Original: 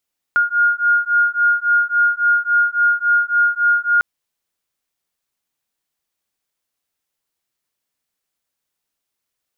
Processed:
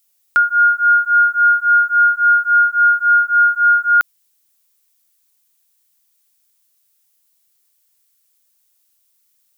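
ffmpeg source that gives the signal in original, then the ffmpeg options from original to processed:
-f lavfi -i "aevalsrc='0.158*(sin(2*PI*1420*t)+sin(2*PI*1423.6*t))':duration=3.65:sample_rate=44100"
-af "crystalizer=i=4.5:c=0"

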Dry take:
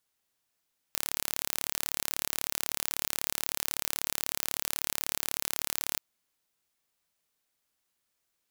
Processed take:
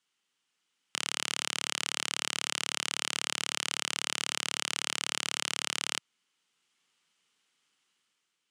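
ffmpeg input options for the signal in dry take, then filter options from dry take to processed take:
-f lavfi -i "aevalsrc='0.668*eq(mod(n,1218),0)':duration=5.04:sample_rate=44100"
-af "dynaudnorm=framelen=120:gausssize=9:maxgain=5.5dB,highpass=frequency=140:width=0.5412,highpass=frequency=140:width=1.3066,equalizer=frequency=630:width_type=q:width=4:gain=-10,equalizer=frequency=1300:width_type=q:width=4:gain=4,equalizer=frequency=2100:width_type=q:width=4:gain=3,equalizer=frequency=3000:width_type=q:width=4:gain=9,lowpass=frequency=8800:width=0.5412,lowpass=frequency=8800:width=1.3066"

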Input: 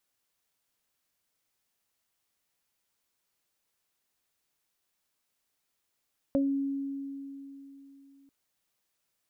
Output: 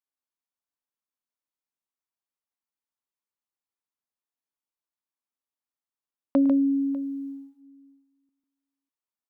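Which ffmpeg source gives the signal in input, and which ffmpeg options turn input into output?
-f lavfi -i "aevalsrc='0.0708*pow(10,-3*t/3.42)*sin(2*PI*276*t)+0.0708*pow(10,-3*t/0.21)*sin(2*PI*552*t)':duration=1.94:sample_rate=44100"
-af "agate=range=-21dB:threshold=-44dB:ratio=16:detection=peak,equalizer=frequency=125:width_type=o:width=1:gain=-5,equalizer=frequency=250:width_type=o:width=1:gain=9,equalizer=frequency=1000:width_type=o:width=1:gain=9,aecho=1:1:106|146|597:0.141|0.531|0.119"

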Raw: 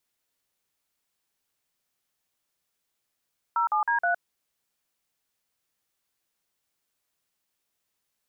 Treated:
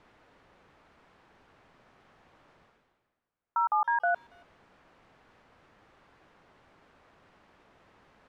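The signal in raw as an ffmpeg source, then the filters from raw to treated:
-f lavfi -i "aevalsrc='0.0631*clip(min(mod(t,0.158),0.112-mod(t,0.158))/0.002,0,1)*(eq(floor(t/0.158),0)*(sin(2*PI*941*mod(t,0.158))+sin(2*PI*1336*mod(t,0.158)))+eq(floor(t/0.158),1)*(sin(2*PI*852*mod(t,0.158))+sin(2*PI*1209*mod(t,0.158)))+eq(floor(t/0.158),2)*(sin(2*PI*941*mod(t,0.158))+sin(2*PI*1633*mod(t,0.158)))+eq(floor(t/0.158),3)*(sin(2*PI*697*mod(t,0.158))+sin(2*PI*1477*mod(t,0.158))))':duration=0.632:sample_rate=44100"
-filter_complex "[0:a]lowpass=1400,areverse,acompressor=mode=upward:threshold=-38dB:ratio=2.5,areverse,asplit=2[link_01][link_02];[link_02]adelay=280,highpass=300,lowpass=3400,asoftclip=type=hard:threshold=-27.5dB,volume=-28dB[link_03];[link_01][link_03]amix=inputs=2:normalize=0"

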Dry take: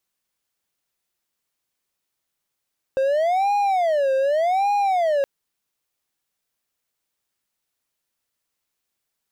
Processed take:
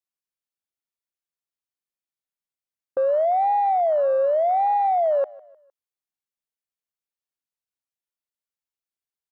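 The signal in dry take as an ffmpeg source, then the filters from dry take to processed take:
-f lavfi -i "aevalsrc='0.178*(1-4*abs(mod((675*t-144/(2*PI*0.85)*sin(2*PI*0.85*t))+0.25,1)-0.5))':duration=2.27:sample_rate=44100"
-filter_complex "[0:a]acrossover=split=3600[link_01][link_02];[link_02]acompressor=threshold=-54dB:ratio=4:attack=1:release=60[link_03];[link_01][link_03]amix=inputs=2:normalize=0,afwtdn=0.0398,aecho=1:1:153|306|459:0.075|0.0315|0.0132"

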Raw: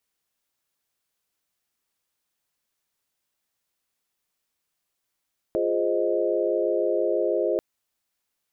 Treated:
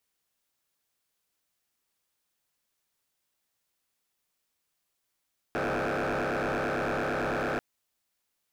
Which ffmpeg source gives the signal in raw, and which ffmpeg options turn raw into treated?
-f lavfi -i "aevalsrc='0.0473*(sin(2*PI*349.23*t)+sin(2*PI*415.3*t)+sin(2*PI*523.25*t)+sin(2*PI*622.25*t))':duration=2.04:sample_rate=44100"
-af "aeval=exprs='0.0562*(abs(mod(val(0)/0.0562+3,4)-2)-1)':channel_layout=same"

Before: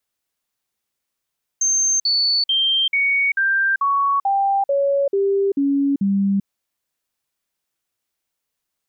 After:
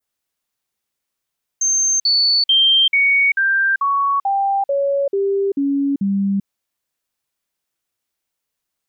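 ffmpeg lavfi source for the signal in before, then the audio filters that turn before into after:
-f lavfi -i "aevalsrc='0.178*clip(min(mod(t,0.44),0.39-mod(t,0.44))/0.005,0,1)*sin(2*PI*6320*pow(2,-floor(t/0.44)/2)*mod(t,0.44))':duration=4.84:sample_rate=44100"
-af "adynamicequalizer=threshold=0.0251:dfrequency=3000:dqfactor=0.95:tfrequency=3000:tqfactor=0.95:attack=5:release=100:ratio=0.375:range=2.5:mode=boostabove:tftype=bell"

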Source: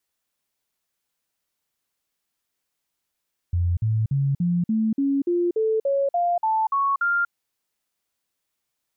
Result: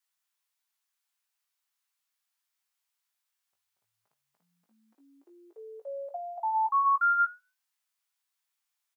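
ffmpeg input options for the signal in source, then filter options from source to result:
-f lavfi -i "aevalsrc='0.119*clip(min(mod(t,0.29),0.24-mod(t,0.29))/0.005,0,1)*sin(2*PI*87.3*pow(2,floor(t/0.29)/3)*mod(t,0.29))':duration=3.77:sample_rate=44100"
-filter_complex "[0:a]highpass=frequency=830:width=0.5412,highpass=frequency=830:width=1.3066,flanger=delay=9.3:depth=1.8:regen=-81:speed=0.63:shape=triangular,asplit=2[link_01][link_02];[link_02]adelay=18,volume=-6dB[link_03];[link_01][link_03]amix=inputs=2:normalize=0"

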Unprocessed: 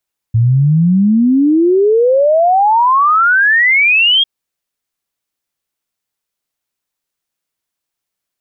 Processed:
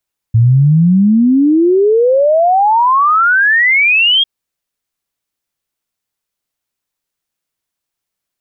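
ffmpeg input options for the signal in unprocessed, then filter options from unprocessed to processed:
-f lavfi -i "aevalsrc='0.447*clip(min(t,3.9-t)/0.01,0,1)*sin(2*PI*110*3.9/log(3300/110)*(exp(log(3300/110)*t/3.9)-1))':duration=3.9:sample_rate=44100"
-af "lowshelf=frequency=150:gain=3.5"

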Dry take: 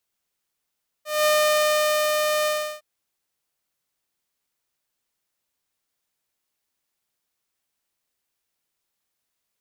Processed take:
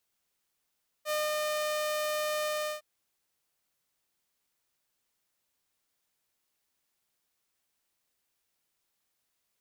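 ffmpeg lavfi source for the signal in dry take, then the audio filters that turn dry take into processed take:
-f lavfi -i "aevalsrc='0.2*(2*mod(607*t,1)-1)':duration=1.76:sample_rate=44100,afade=type=in:duration=0.201,afade=type=out:start_time=0.201:duration=0.854:silence=0.668,afade=type=out:start_time=1.41:duration=0.35"
-af "acompressor=threshold=-29dB:ratio=16"

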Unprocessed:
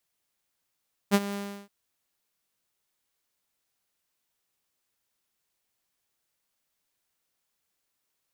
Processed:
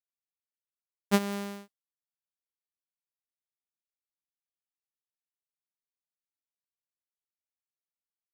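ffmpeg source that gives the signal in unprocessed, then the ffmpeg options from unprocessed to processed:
-f lavfi -i "aevalsrc='0.211*(2*mod(201*t,1)-1)':duration=0.573:sample_rate=44100,afade=type=in:duration=0.035,afade=type=out:start_time=0.035:duration=0.045:silence=0.178,afade=type=out:start_time=0.23:duration=0.343"
-af "agate=range=-33dB:threshold=-45dB:ratio=3:detection=peak"

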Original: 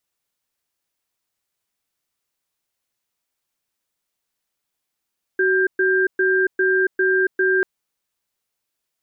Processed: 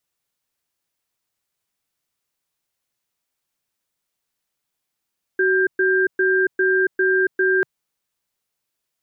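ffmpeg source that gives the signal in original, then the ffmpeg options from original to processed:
-f lavfi -i "aevalsrc='0.133*(sin(2*PI*376*t)+sin(2*PI*1590*t))*clip(min(mod(t,0.4),0.28-mod(t,0.4))/0.005,0,1)':duration=2.24:sample_rate=44100"
-af "equalizer=frequency=140:width_type=o:width=0.77:gain=3"

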